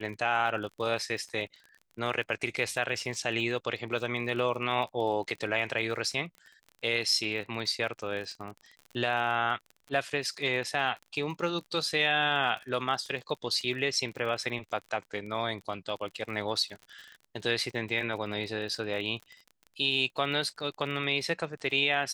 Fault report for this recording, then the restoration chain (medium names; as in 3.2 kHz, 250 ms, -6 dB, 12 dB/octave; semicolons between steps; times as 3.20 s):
crackle 37 per s -38 dBFS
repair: de-click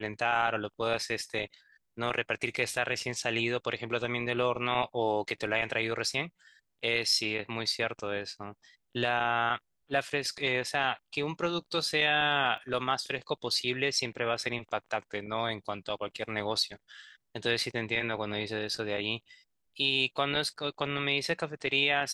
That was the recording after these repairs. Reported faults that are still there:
nothing left